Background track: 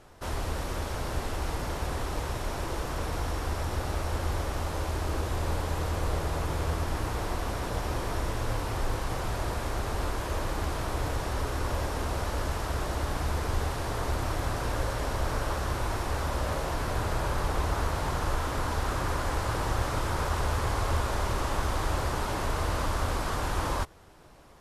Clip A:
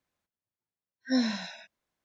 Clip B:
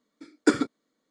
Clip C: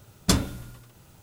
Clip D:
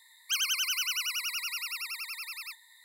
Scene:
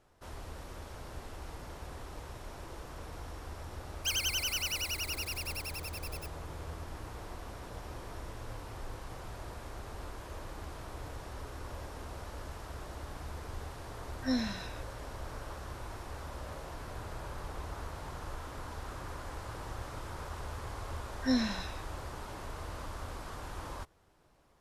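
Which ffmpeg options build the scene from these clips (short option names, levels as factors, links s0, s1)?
-filter_complex "[1:a]asplit=2[s0][s1];[0:a]volume=0.224[s2];[4:a]aeval=exprs='val(0)*gte(abs(val(0)),0.0168)':c=same,atrim=end=2.84,asetpts=PTS-STARTPTS,volume=0.708,afade=t=in:d=0.004:c=hsin,afade=t=out:st=2.836:d=0.004:c=hsin,adelay=3750[s3];[s0]atrim=end=2.04,asetpts=PTS-STARTPTS,volume=0.562,afade=t=in:d=0.004:c=hsin,afade=t=out:st=2.036:d=0.004:c=hsin,adelay=580356S[s4];[s1]atrim=end=2.04,asetpts=PTS-STARTPTS,volume=0.75,afade=t=in:d=0.004:c=hsin,afade=t=out:st=2.036:d=0.004:c=hsin,adelay=20160[s5];[s2][s3][s4][s5]amix=inputs=4:normalize=0"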